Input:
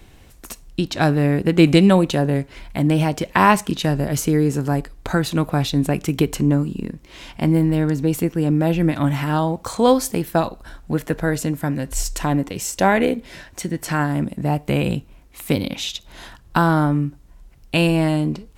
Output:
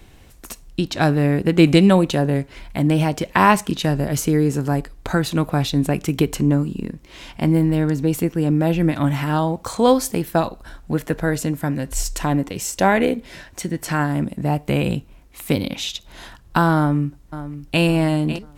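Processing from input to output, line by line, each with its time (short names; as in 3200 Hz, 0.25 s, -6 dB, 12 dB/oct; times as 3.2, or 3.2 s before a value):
16.77–17.83 echo throw 0.55 s, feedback 35%, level -12.5 dB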